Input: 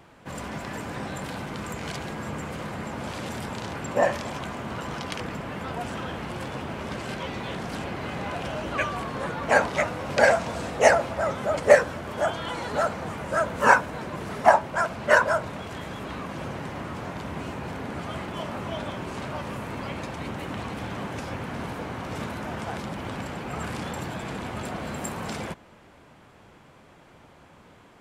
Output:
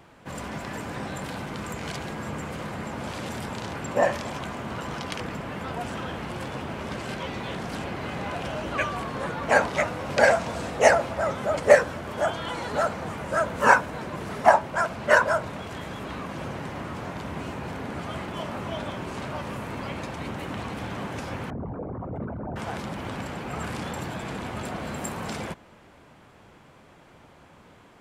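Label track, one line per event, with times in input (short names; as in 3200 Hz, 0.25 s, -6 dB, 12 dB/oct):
21.500000	22.560000	formant sharpening exponent 3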